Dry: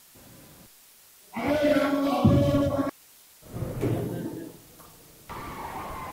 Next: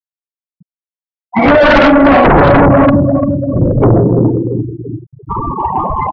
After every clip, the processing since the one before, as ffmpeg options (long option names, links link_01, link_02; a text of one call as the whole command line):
ffmpeg -i in.wav -filter_complex "[0:a]asplit=2[link_01][link_02];[link_02]adelay=343,lowpass=frequency=4200:poles=1,volume=-9.5dB,asplit=2[link_03][link_04];[link_04]adelay=343,lowpass=frequency=4200:poles=1,volume=0.55,asplit=2[link_05][link_06];[link_06]adelay=343,lowpass=frequency=4200:poles=1,volume=0.55,asplit=2[link_07][link_08];[link_08]adelay=343,lowpass=frequency=4200:poles=1,volume=0.55,asplit=2[link_09][link_10];[link_10]adelay=343,lowpass=frequency=4200:poles=1,volume=0.55,asplit=2[link_11][link_12];[link_12]adelay=343,lowpass=frequency=4200:poles=1,volume=0.55[link_13];[link_01][link_03][link_05][link_07][link_09][link_11][link_13]amix=inputs=7:normalize=0,afftfilt=real='re*gte(hypot(re,im),0.0398)':imag='im*gte(hypot(re,im),0.0398)':win_size=1024:overlap=0.75,aeval=exprs='0.355*sin(PI/2*4.47*val(0)/0.355)':channel_layout=same,volume=6dB" out.wav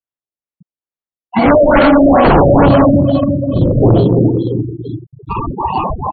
ffmpeg -i in.wav -filter_complex "[0:a]asplit=2[link_01][link_02];[link_02]acrusher=samples=12:mix=1:aa=0.000001,volume=-4dB[link_03];[link_01][link_03]amix=inputs=2:normalize=0,afftfilt=real='re*lt(b*sr/1024,700*pow(4600/700,0.5+0.5*sin(2*PI*2.3*pts/sr)))':imag='im*lt(b*sr/1024,700*pow(4600/700,0.5+0.5*sin(2*PI*2.3*pts/sr)))':win_size=1024:overlap=0.75,volume=-5dB" out.wav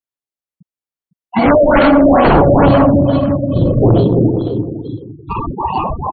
ffmpeg -i in.wav -af "aecho=1:1:506:0.211,volume=-1dB" out.wav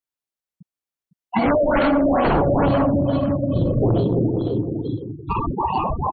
ffmpeg -i in.wav -af "acompressor=threshold=-20dB:ratio=2.5" out.wav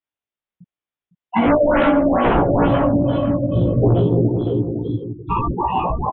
ffmpeg -i in.wav -filter_complex "[0:a]aresample=8000,aresample=44100,asplit=2[link_01][link_02];[link_02]adelay=17,volume=-2dB[link_03];[link_01][link_03]amix=inputs=2:normalize=0" out.wav